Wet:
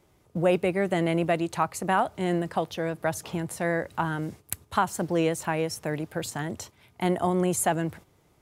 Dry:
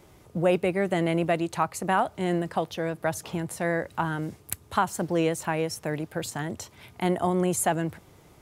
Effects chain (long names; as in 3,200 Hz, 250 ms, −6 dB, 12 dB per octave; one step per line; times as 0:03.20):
noise gate −44 dBFS, range −9 dB